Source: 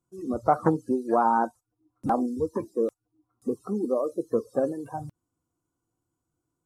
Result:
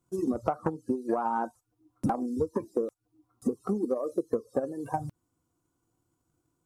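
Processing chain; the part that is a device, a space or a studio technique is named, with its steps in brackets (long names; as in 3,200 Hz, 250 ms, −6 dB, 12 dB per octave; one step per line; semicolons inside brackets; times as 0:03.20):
drum-bus smash (transient designer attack +8 dB, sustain 0 dB; downward compressor 8 to 1, threshold −29 dBFS, peak gain reduction 20 dB; soft clipping −15.5 dBFS, distortion −27 dB)
level +4 dB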